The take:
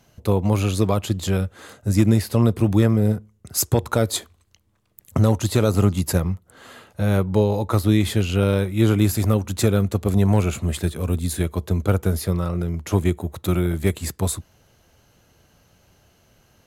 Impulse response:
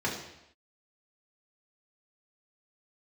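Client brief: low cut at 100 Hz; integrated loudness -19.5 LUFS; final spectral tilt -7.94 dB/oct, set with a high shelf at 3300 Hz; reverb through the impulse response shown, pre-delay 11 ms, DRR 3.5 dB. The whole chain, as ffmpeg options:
-filter_complex "[0:a]highpass=100,highshelf=f=3.3k:g=-3,asplit=2[a][b];[1:a]atrim=start_sample=2205,adelay=11[c];[b][c]afir=irnorm=-1:irlink=0,volume=-12.5dB[d];[a][d]amix=inputs=2:normalize=0,volume=0.5dB"

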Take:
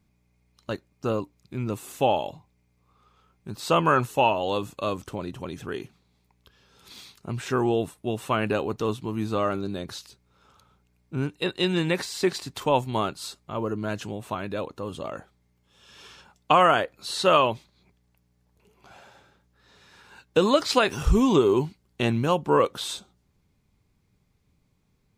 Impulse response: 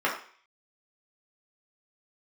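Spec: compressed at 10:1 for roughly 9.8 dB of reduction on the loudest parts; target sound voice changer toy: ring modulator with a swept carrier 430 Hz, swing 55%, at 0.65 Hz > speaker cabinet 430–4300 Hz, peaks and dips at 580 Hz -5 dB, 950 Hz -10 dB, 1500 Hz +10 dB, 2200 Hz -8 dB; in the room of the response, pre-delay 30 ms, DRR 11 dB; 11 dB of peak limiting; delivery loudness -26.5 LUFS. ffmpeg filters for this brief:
-filter_complex "[0:a]acompressor=threshold=-24dB:ratio=10,alimiter=limit=-21.5dB:level=0:latency=1,asplit=2[a][b];[1:a]atrim=start_sample=2205,adelay=30[c];[b][c]afir=irnorm=-1:irlink=0,volume=-24.5dB[d];[a][d]amix=inputs=2:normalize=0,aeval=exprs='val(0)*sin(2*PI*430*n/s+430*0.55/0.65*sin(2*PI*0.65*n/s))':c=same,highpass=430,equalizer=f=580:t=q:w=4:g=-5,equalizer=f=950:t=q:w=4:g=-10,equalizer=f=1.5k:t=q:w=4:g=10,equalizer=f=2.2k:t=q:w=4:g=-8,lowpass=f=4.3k:w=0.5412,lowpass=f=4.3k:w=1.3066,volume=12dB"

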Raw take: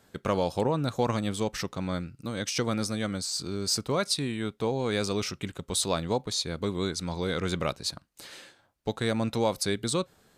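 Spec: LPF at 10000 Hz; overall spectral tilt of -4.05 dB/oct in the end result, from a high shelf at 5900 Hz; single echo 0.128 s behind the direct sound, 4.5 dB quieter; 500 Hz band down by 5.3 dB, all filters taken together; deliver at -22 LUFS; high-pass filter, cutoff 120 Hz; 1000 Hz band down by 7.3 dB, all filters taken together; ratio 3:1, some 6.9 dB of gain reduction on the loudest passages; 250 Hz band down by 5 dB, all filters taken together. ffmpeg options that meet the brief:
-af "highpass=120,lowpass=10k,equalizer=f=250:t=o:g=-5,equalizer=f=500:t=o:g=-3,equalizer=f=1k:t=o:g=-8,highshelf=f=5.9k:g=-8.5,acompressor=threshold=-36dB:ratio=3,aecho=1:1:128:0.596,volume=16.5dB"

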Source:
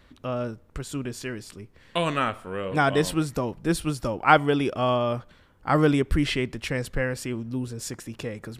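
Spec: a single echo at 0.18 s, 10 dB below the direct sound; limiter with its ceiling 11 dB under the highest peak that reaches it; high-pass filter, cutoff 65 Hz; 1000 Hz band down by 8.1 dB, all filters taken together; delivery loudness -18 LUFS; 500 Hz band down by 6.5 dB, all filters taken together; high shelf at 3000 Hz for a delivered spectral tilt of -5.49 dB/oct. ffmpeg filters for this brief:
-af "highpass=65,equalizer=f=500:t=o:g=-5.5,equalizer=f=1k:t=o:g=-9,highshelf=f=3k:g=-6.5,alimiter=limit=-21.5dB:level=0:latency=1,aecho=1:1:180:0.316,volume=15dB"

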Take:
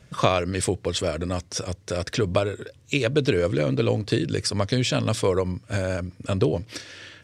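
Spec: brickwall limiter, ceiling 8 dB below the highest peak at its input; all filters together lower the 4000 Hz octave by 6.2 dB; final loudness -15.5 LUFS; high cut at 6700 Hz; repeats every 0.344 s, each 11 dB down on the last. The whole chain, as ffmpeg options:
-af "lowpass=6.7k,equalizer=f=4k:t=o:g=-7.5,alimiter=limit=-13.5dB:level=0:latency=1,aecho=1:1:344|688|1032:0.282|0.0789|0.0221,volume=11.5dB"

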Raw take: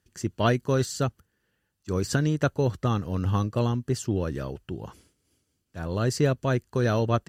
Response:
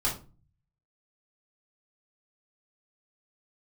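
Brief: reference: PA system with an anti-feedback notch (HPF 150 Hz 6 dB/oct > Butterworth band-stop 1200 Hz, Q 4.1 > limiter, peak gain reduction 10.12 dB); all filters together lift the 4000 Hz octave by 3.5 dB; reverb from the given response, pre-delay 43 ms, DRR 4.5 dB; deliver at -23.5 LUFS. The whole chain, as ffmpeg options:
-filter_complex "[0:a]equalizer=f=4k:t=o:g=4.5,asplit=2[a][b];[1:a]atrim=start_sample=2205,adelay=43[c];[b][c]afir=irnorm=-1:irlink=0,volume=-12.5dB[d];[a][d]amix=inputs=2:normalize=0,highpass=f=150:p=1,asuperstop=centerf=1200:order=8:qfactor=4.1,volume=6.5dB,alimiter=limit=-13.5dB:level=0:latency=1"

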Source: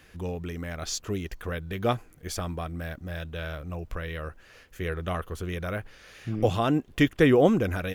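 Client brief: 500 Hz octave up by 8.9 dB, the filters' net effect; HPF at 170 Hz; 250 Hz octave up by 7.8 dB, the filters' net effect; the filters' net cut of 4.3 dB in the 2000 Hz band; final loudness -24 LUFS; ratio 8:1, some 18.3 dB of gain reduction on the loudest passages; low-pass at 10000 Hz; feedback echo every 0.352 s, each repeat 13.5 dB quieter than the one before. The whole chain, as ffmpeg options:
-af "highpass=170,lowpass=10k,equalizer=f=250:t=o:g=8,equalizer=f=500:t=o:g=8.5,equalizer=f=2k:t=o:g=-6,acompressor=threshold=-27dB:ratio=8,aecho=1:1:352|704:0.211|0.0444,volume=9dB"

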